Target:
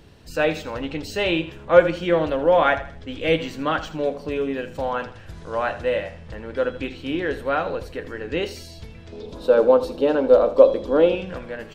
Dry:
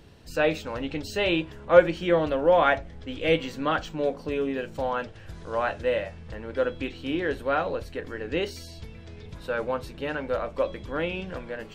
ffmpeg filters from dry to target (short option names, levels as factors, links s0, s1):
-filter_complex "[0:a]asettb=1/sr,asplit=3[s0][s1][s2];[s0]atrim=end=9.124[s3];[s1]atrim=start=9.12:end=11.15,asetpts=PTS-STARTPTS,afade=t=in:d=0.004:c=qsin,afade=t=out:st=2.026:d=0.004:c=qsin,equalizer=f=125:t=o:w=1:g=-10,equalizer=f=250:t=o:w=1:g=9,equalizer=f=500:t=o:w=1:g=11,equalizer=f=1000:t=o:w=1:g=4,equalizer=f=2000:t=o:w=1:g=-9,equalizer=f=4000:t=o:w=1:g=6[s4];[s2]atrim=start=11.146[s5];[s3][s4]acrossfade=d=0.004:c1=hsin:c2=qsin[s6];[s6][s5]acrossfade=d=0.004:c1=qsin:c2=hsin,aecho=1:1:80|160|240:0.2|0.0698|0.0244,volume=1.33"